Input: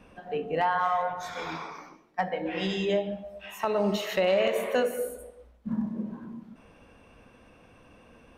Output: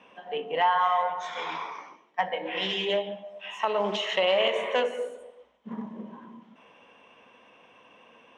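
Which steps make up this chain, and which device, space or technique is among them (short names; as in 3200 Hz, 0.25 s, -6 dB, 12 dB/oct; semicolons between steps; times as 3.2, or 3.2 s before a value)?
full-range speaker at full volume (Doppler distortion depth 0.22 ms; speaker cabinet 290–6900 Hz, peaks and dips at 310 Hz -5 dB, 990 Hz +7 dB, 1400 Hz -3 dB, 2000 Hz +4 dB, 3100 Hz +10 dB, 4600 Hz -8 dB)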